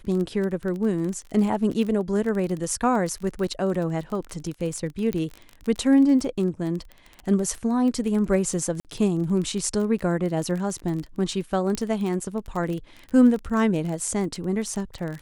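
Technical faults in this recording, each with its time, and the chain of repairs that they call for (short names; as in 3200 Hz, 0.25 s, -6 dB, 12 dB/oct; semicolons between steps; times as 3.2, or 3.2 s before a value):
crackle 24/s -29 dBFS
5.13 pop -14 dBFS
8.8–8.85 gap 48 ms
11.75 pop -14 dBFS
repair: de-click; interpolate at 8.8, 48 ms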